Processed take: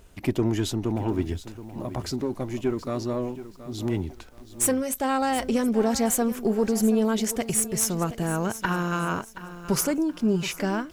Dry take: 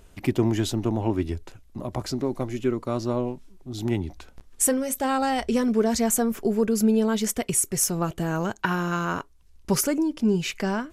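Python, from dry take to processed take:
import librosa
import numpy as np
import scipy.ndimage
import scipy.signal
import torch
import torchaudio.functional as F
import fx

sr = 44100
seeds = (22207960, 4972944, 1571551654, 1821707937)

y = fx.diode_clip(x, sr, knee_db=-16.0)
y = fx.quant_dither(y, sr, seeds[0], bits=12, dither='none')
y = fx.echo_crushed(y, sr, ms=725, feedback_pct=35, bits=8, wet_db=-13.5)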